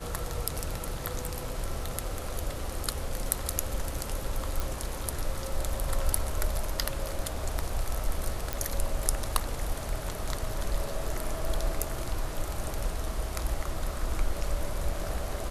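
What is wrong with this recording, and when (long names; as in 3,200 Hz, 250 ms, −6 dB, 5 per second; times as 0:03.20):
0:04.60: click
0:08.53: click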